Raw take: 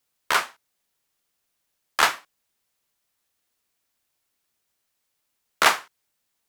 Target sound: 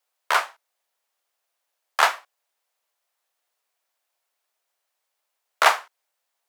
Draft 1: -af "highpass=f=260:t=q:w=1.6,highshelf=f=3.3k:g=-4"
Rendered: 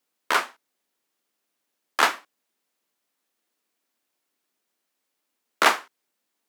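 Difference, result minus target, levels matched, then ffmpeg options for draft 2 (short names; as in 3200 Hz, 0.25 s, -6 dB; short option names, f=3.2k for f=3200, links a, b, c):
250 Hz band +15.5 dB
-af "highpass=f=640:t=q:w=1.6,highshelf=f=3.3k:g=-4"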